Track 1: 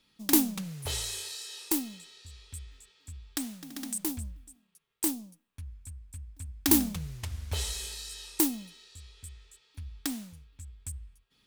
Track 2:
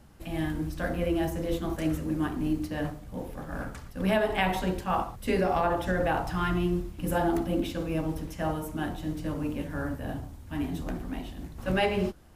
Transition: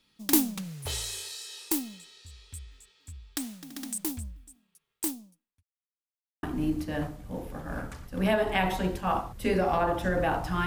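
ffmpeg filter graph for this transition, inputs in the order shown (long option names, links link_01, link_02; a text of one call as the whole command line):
ffmpeg -i cue0.wav -i cue1.wav -filter_complex "[0:a]apad=whole_dur=10.66,atrim=end=10.66,asplit=2[link_01][link_02];[link_01]atrim=end=5.63,asetpts=PTS-STARTPTS,afade=type=out:start_time=4.9:duration=0.73[link_03];[link_02]atrim=start=5.63:end=6.43,asetpts=PTS-STARTPTS,volume=0[link_04];[1:a]atrim=start=2.26:end=6.49,asetpts=PTS-STARTPTS,afade=type=in:duration=0.004:curve=hsin[link_05];[link_03][link_04][link_05]concat=n=3:v=0:a=1" out.wav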